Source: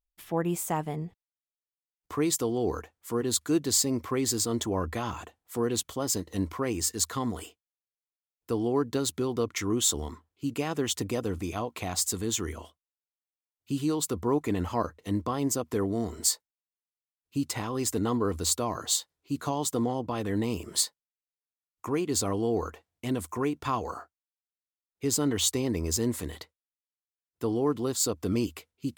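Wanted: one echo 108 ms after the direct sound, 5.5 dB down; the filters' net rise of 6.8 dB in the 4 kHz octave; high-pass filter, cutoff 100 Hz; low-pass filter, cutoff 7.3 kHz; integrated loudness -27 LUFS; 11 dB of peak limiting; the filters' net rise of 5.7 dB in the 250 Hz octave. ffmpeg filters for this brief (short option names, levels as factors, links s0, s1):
-af "highpass=100,lowpass=7300,equalizer=f=250:t=o:g=7,equalizer=f=4000:t=o:g=8.5,alimiter=limit=0.106:level=0:latency=1,aecho=1:1:108:0.531,volume=1.26"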